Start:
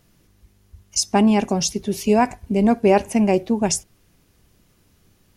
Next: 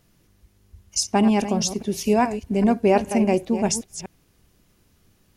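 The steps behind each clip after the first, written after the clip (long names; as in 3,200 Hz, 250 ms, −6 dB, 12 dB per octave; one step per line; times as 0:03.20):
delay that plays each chunk backwards 203 ms, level −10 dB
level −2.5 dB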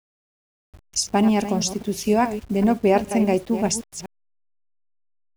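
hold until the input has moved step −42 dBFS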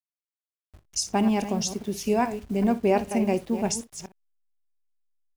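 ambience of single reflections 26 ms −17.5 dB, 60 ms −17.5 dB
level −4.5 dB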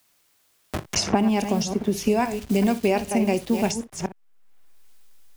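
multiband upward and downward compressor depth 100%
level +2 dB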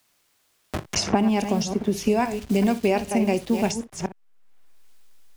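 high-shelf EQ 10,000 Hz −5 dB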